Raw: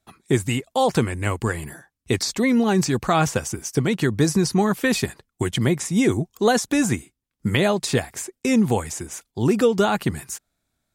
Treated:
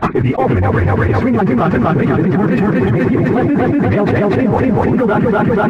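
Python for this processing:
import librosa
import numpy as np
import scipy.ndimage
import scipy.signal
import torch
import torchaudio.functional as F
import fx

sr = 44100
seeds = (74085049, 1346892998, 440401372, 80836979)

p1 = scipy.signal.sosfilt(scipy.signal.butter(4, 1900.0, 'lowpass', fs=sr, output='sos'), x)
p2 = fx.leveller(p1, sr, passes=1)
p3 = fx.rider(p2, sr, range_db=4, speed_s=0.5)
p4 = p2 + (p3 * librosa.db_to_amplitude(0.0))
p5 = fx.stretch_vocoder_free(p4, sr, factor=0.52)
p6 = p5 + fx.echo_feedback(p5, sr, ms=242, feedback_pct=46, wet_db=-4.0, dry=0)
p7 = fx.env_flatten(p6, sr, amount_pct=100)
y = p7 * librosa.db_to_amplitude(-3.0)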